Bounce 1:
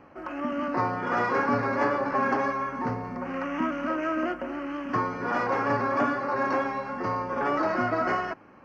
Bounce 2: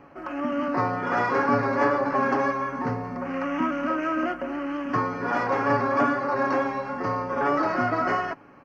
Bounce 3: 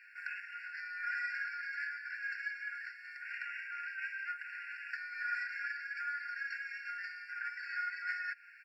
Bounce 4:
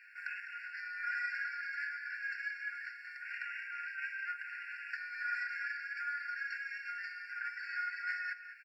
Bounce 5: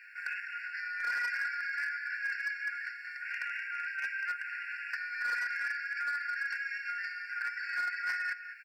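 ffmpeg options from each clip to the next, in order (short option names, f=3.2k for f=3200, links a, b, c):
-af "aecho=1:1:7.1:0.32,volume=1.5dB"
-af "acompressor=threshold=-33dB:ratio=6,afftfilt=real='re*eq(mod(floor(b*sr/1024/1400),2),1)':imag='im*eq(mod(floor(b*sr/1024/1400),2),1)':win_size=1024:overlap=0.75,volume=5dB"
-filter_complex "[0:a]asplit=2[a][b];[b]adelay=204.1,volume=-11dB,highshelf=f=4k:g=-4.59[c];[a][c]amix=inputs=2:normalize=0"
-af "asoftclip=type=hard:threshold=-33.5dB,volume=5dB"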